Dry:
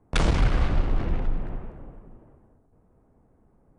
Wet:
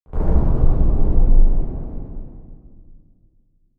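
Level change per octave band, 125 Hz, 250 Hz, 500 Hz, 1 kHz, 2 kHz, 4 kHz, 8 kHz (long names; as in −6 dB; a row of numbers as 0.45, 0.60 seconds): +6.5 dB, +6.0 dB, +4.5 dB, −1.5 dB, below −15 dB, below −20 dB, can't be measured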